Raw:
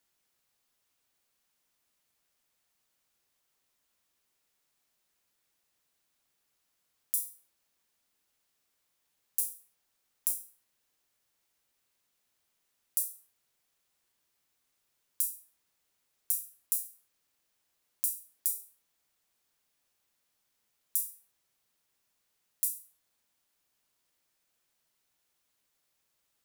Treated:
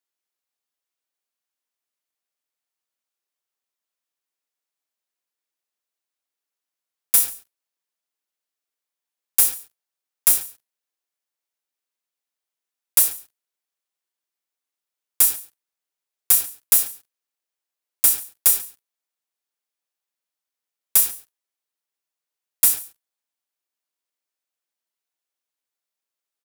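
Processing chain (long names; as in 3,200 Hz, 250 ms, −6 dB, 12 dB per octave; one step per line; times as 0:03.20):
high-pass filter 300 Hz
leveller curve on the samples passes 5
single-tap delay 142 ms −20.5 dB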